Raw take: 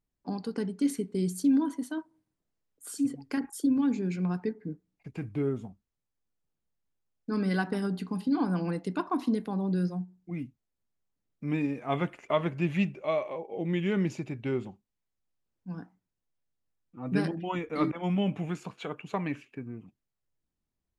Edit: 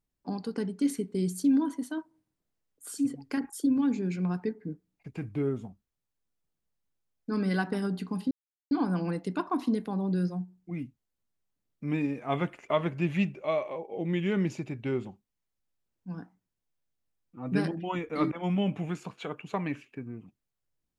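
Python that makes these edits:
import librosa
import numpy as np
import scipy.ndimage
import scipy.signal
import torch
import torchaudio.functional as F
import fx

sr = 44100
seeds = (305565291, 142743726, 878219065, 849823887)

y = fx.edit(x, sr, fx.insert_silence(at_s=8.31, length_s=0.4), tone=tone)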